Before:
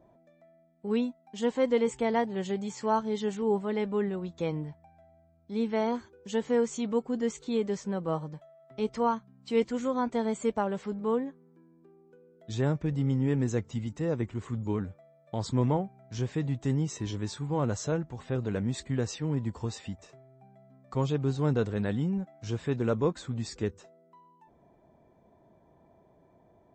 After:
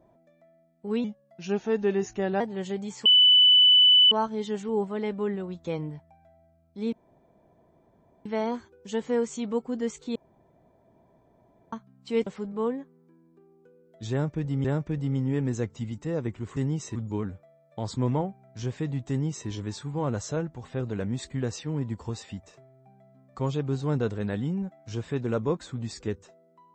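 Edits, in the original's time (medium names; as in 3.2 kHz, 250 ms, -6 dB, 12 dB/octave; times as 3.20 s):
1.04–2.20 s: speed 85%
2.85 s: add tone 2.99 kHz -13.5 dBFS 1.06 s
5.66 s: insert room tone 1.33 s
7.56–9.13 s: room tone
9.67–10.74 s: delete
12.59–13.12 s: loop, 2 plays
16.65–17.04 s: copy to 14.51 s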